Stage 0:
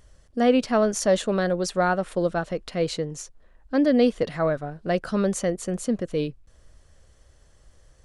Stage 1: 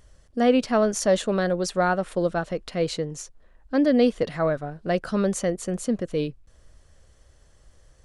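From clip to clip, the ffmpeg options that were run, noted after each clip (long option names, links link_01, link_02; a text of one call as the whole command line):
ffmpeg -i in.wav -af anull out.wav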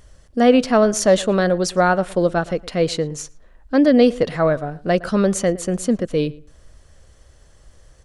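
ffmpeg -i in.wav -filter_complex "[0:a]asplit=2[link_01][link_02];[link_02]adelay=113,lowpass=frequency=2300:poles=1,volume=-20dB,asplit=2[link_03][link_04];[link_04]adelay=113,lowpass=frequency=2300:poles=1,volume=0.2[link_05];[link_01][link_03][link_05]amix=inputs=3:normalize=0,volume=6dB" out.wav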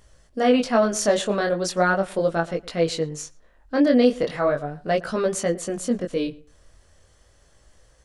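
ffmpeg -i in.wav -af "lowshelf=frequency=250:gain=-5.5,flanger=delay=17.5:depth=6.8:speed=0.38" out.wav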